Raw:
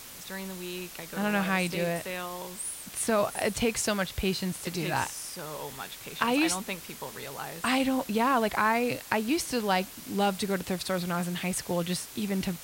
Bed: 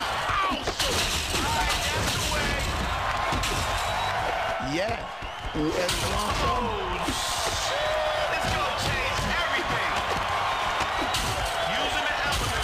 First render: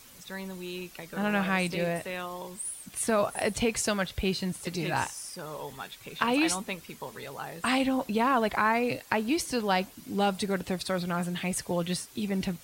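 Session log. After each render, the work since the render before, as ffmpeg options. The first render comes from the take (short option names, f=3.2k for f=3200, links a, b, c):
-af "afftdn=nr=9:nf=-45"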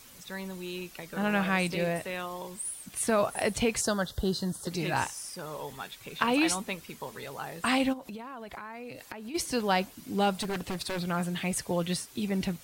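-filter_complex "[0:a]asettb=1/sr,asplit=3[a][b][c];[a]atrim=end=3.814[d];[b]atrim=start=3.81:end=4.71,asetpts=PTS-STARTPTS,afade=t=in:d=0.004:c=qsin,afade=t=out:st=0.896:d=0.004:c=qsin,asuperstop=centerf=2400:order=4:qfactor=1.4[e];[c]atrim=start=4.706[f];[d][e]acrossfade=d=0.004:c1=hsin:c2=qsin[g];[g][f]acrossfade=d=0.004:c1=qsin:c2=hsin,asplit=3[h][i][j];[h]afade=t=out:st=7.92:d=0.02[k];[i]acompressor=threshold=-37dB:ratio=16:attack=3.2:release=140:knee=1:detection=peak,afade=t=in:st=7.92:d=0.02,afade=t=out:st=9.34:d=0.02[l];[j]afade=t=in:st=9.34:d=0.02[m];[k][l][m]amix=inputs=3:normalize=0,asettb=1/sr,asplit=3[n][o][p];[n]atrim=end=10.404[q];[o]atrim=start=10.4:end=11.05,asetpts=PTS-STARTPTS,afade=t=in:d=0.004:c=qsin,afade=t=out:st=0.646:d=0.004:c=qsin,aeval=exprs='0.0473*(abs(mod(val(0)/0.0473+3,4)-2)-1)':c=same[r];[p]atrim=start=11.046[s];[q][r]acrossfade=d=0.004:c1=hsin:c2=qsin[t];[t][s]acrossfade=d=0.004:c1=qsin:c2=hsin"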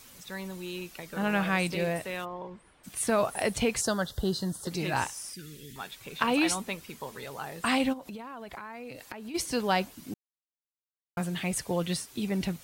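-filter_complex "[0:a]asplit=3[a][b][c];[a]afade=t=out:st=2.24:d=0.02[d];[b]lowpass=1.7k,afade=t=in:st=2.24:d=0.02,afade=t=out:st=2.83:d=0.02[e];[c]afade=t=in:st=2.83:d=0.02[f];[d][e][f]amix=inputs=3:normalize=0,asettb=1/sr,asplit=3[g][h][i];[g]atrim=end=5.334[j];[h]atrim=start=5.33:end=5.76,asetpts=PTS-STARTPTS,afade=t=in:d=0.004:c=qsin,afade=t=out:st=0.426:d=0.004:c=qsin,asuperstop=centerf=800:order=8:qfactor=0.59[k];[i]atrim=start=5.756[l];[j][k]acrossfade=d=0.004:c1=hsin:c2=qsin[m];[m][l]acrossfade=d=0.004:c1=qsin:c2=hsin,asplit=3[n][o][p];[n]atrim=end=10.14,asetpts=PTS-STARTPTS,afade=t=out:st=10.136:d=0.004:c=hsin[q];[o]atrim=start=10.14:end=11.17,asetpts=PTS-STARTPTS,volume=0[r];[p]atrim=start=11.17,asetpts=PTS-STARTPTS,afade=t=in:d=0.004:c=hsin[s];[q][r][s]concat=n=3:v=0:a=1"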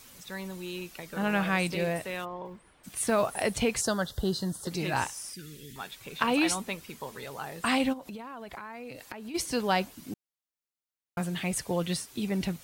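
-filter_complex "[0:a]asettb=1/sr,asplit=3[a][b][c];[a]atrim=end=2.454[d];[b]atrim=start=2.45:end=3.3,asetpts=PTS-STARTPTS,afade=t=in:d=0.004:c=qsin,afade=t=out:st=0.846:d=0.004:c=qsin,acrusher=bits=8:mode=log:mix=0:aa=0.000001[e];[c]atrim=start=3.296[f];[d][e]acrossfade=d=0.004:c1=hsin:c2=qsin[g];[g][f]acrossfade=d=0.004:c1=qsin:c2=hsin"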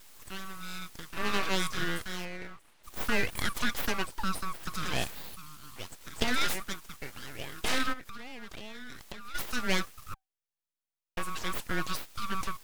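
-af "afreqshift=380,aeval=exprs='abs(val(0))':c=same"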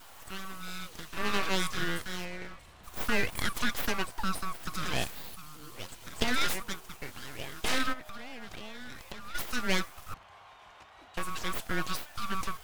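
-filter_complex "[1:a]volume=-27.5dB[a];[0:a][a]amix=inputs=2:normalize=0"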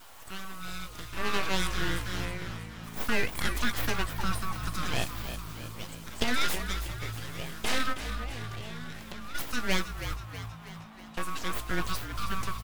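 -filter_complex "[0:a]asplit=2[a][b];[b]adelay=17,volume=-13dB[c];[a][c]amix=inputs=2:normalize=0,asplit=8[d][e][f][g][h][i][j][k];[e]adelay=320,afreqshift=-55,volume=-10dB[l];[f]adelay=640,afreqshift=-110,volume=-14.7dB[m];[g]adelay=960,afreqshift=-165,volume=-19.5dB[n];[h]adelay=1280,afreqshift=-220,volume=-24.2dB[o];[i]adelay=1600,afreqshift=-275,volume=-28.9dB[p];[j]adelay=1920,afreqshift=-330,volume=-33.7dB[q];[k]adelay=2240,afreqshift=-385,volume=-38.4dB[r];[d][l][m][n][o][p][q][r]amix=inputs=8:normalize=0"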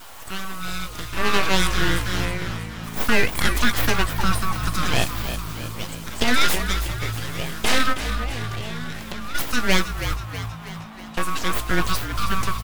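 -af "volume=9.5dB,alimiter=limit=-3dB:level=0:latency=1"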